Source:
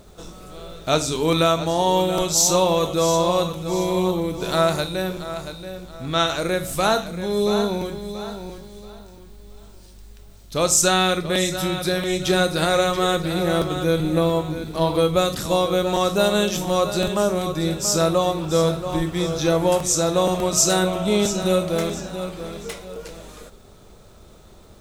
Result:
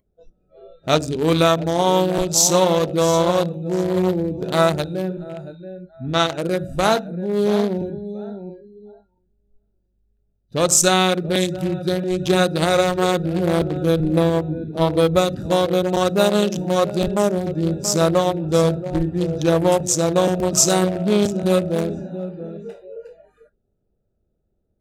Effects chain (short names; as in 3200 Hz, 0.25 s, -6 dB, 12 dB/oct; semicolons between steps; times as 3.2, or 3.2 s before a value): Wiener smoothing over 41 samples; spectral noise reduction 26 dB; gain +3.5 dB